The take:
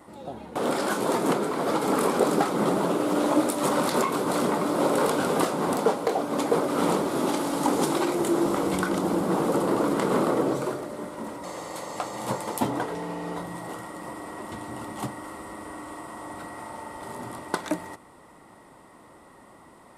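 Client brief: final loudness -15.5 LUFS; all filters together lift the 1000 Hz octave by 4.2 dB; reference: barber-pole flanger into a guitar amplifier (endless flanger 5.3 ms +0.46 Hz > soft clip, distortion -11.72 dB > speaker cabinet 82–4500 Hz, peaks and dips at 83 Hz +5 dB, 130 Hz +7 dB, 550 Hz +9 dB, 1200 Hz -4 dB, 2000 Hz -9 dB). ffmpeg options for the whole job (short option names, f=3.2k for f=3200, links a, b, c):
-filter_complex "[0:a]equalizer=f=1k:t=o:g=6,asplit=2[a][b];[b]adelay=5.3,afreqshift=0.46[c];[a][c]amix=inputs=2:normalize=1,asoftclip=threshold=-23dB,highpass=82,equalizer=f=83:t=q:w=4:g=5,equalizer=f=130:t=q:w=4:g=7,equalizer=f=550:t=q:w=4:g=9,equalizer=f=1.2k:t=q:w=4:g=-4,equalizer=f=2k:t=q:w=4:g=-9,lowpass=f=4.5k:w=0.5412,lowpass=f=4.5k:w=1.3066,volume=13.5dB"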